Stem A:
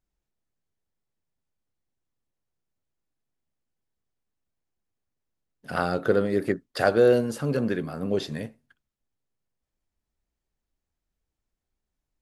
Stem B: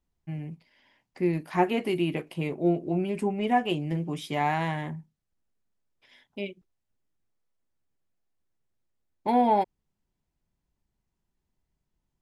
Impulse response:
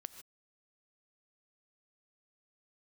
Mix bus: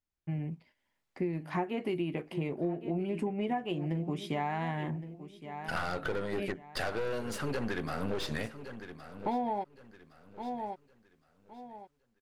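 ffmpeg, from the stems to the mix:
-filter_complex "[0:a]tiltshelf=f=970:g=-7,dynaudnorm=f=230:g=5:m=4.47,aeval=exprs='(tanh(10*val(0)+0.65)-tanh(0.65))/10':c=same,volume=0.631,asplit=2[s0][s1];[s1]volume=0.178[s2];[1:a]agate=range=0.141:threshold=0.00112:ratio=16:detection=peak,volume=1.12,asplit=2[s3][s4];[s4]volume=0.15[s5];[s2][s5]amix=inputs=2:normalize=0,aecho=0:1:1115|2230|3345|4460:1|0.3|0.09|0.027[s6];[s0][s3][s6]amix=inputs=3:normalize=0,highshelf=f=4100:g=-11,acompressor=threshold=0.0355:ratio=12"

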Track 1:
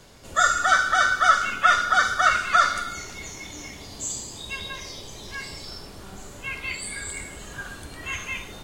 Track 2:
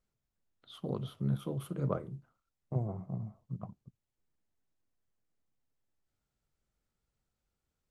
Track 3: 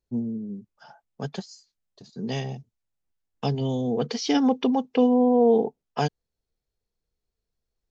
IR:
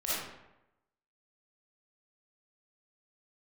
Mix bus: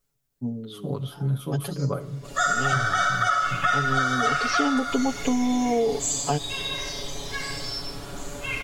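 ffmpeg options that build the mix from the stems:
-filter_complex "[0:a]dynaudnorm=f=150:g=3:m=2.82,adelay=2000,volume=0.266,asplit=2[s0][s1];[s1]volume=0.531[s2];[1:a]highshelf=f=6300:g=11,volume=1.33,asplit=3[s3][s4][s5];[s4]volume=0.0668[s6];[s5]volume=0.141[s7];[2:a]adelay=300,volume=0.75[s8];[3:a]atrim=start_sample=2205[s9];[s2][s6]amix=inputs=2:normalize=0[s10];[s10][s9]afir=irnorm=-1:irlink=0[s11];[s7]aecho=0:1:328:1[s12];[s0][s3][s8][s11][s12]amix=inputs=5:normalize=0,aecho=1:1:7.1:0.97,acompressor=threshold=0.112:ratio=6"

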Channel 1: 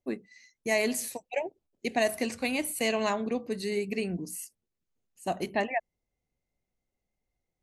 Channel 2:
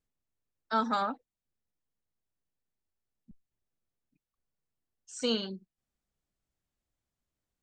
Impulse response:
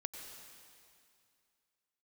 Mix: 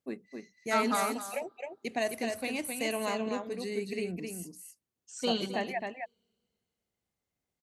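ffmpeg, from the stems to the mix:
-filter_complex "[0:a]volume=0.562,asplit=2[s0][s1];[s1]volume=0.562[s2];[1:a]volume=0.841,asplit=3[s3][s4][s5];[s4]volume=0.0944[s6];[s5]volume=0.237[s7];[2:a]atrim=start_sample=2205[s8];[s6][s8]afir=irnorm=-1:irlink=0[s9];[s2][s7]amix=inputs=2:normalize=0,aecho=0:1:263:1[s10];[s0][s3][s9][s10]amix=inputs=4:normalize=0,highpass=80"

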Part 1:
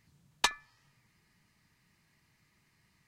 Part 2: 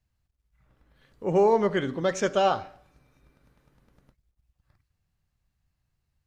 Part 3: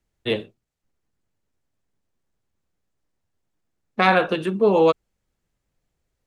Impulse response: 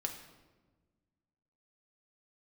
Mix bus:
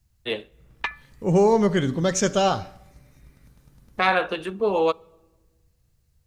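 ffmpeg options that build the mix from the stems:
-filter_complex "[0:a]lowpass=f=2200:t=q:w=2.7,adelay=400,volume=0.668,asplit=2[s0][s1];[s1]volume=0.1[s2];[1:a]bass=f=250:g=10,treble=f=4000:g=12,volume=1.06,asplit=2[s3][s4];[s4]volume=0.0944[s5];[2:a]lowshelf=f=280:g=-11.5,volume=0.75,asplit=2[s6][s7];[s7]volume=0.0891[s8];[3:a]atrim=start_sample=2205[s9];[s2][s5][s8]amix=inputs=3:normalize=0[s10];[s10][s9]afir=irnorm=-1:irlink=0[s11];[s0][s3][s6][s11]amix=inputs=4:normalize=0"

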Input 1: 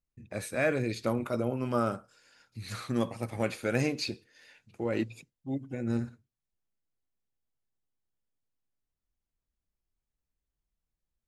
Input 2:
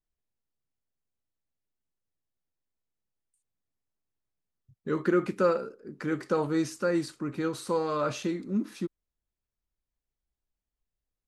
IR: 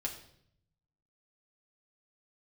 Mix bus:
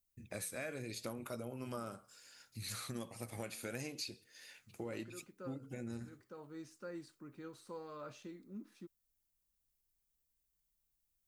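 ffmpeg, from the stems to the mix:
-filter_complex "[0:a]aemphasis=mode=production:type=75kf,acompressor=threshold=0.0141:ratio=5,flanger=delay=1.4:depth=10:regen=-88:speed=0.71:shape=sinusoidal,volume=1.06,asplit=2[s0][s1];[1:a]volume=0.106[s2];[s1]apad=whole_len=497423[s3];[s2][s3]sidechaincompress=threshold=0.00355:ratio=8:attack=16:release=975[s4];[s0][s4]amix=inputs=2:normalize=0"

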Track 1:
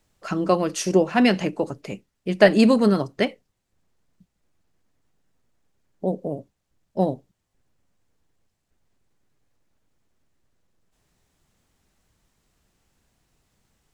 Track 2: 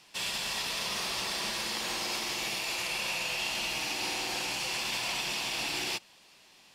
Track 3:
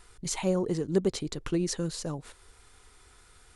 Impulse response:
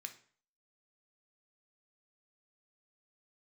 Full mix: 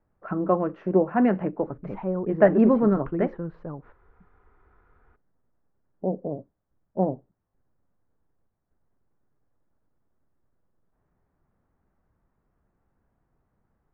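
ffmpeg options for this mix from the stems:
-filter_complex "[0:a]volume=0.75,asplit=2[s0][s1];[s1]volume=0.0631[s2];[2:a]adelay=1600,volume=0.794,asplit=2[s3][s4];[s4]volume=0.398[s5];[3:a]atrim=start_sample=2205[s6];[s2][s5]amix=inputs=2:normalize=0[s7];[s7][s6]afir=irnorm=-1:irlink=0[s8];[s0][s3][s8]amix=inputs=3:normalize=0,lowpass=f=1500:w=0.5412,lowpass=f=1500:w=1.3066"

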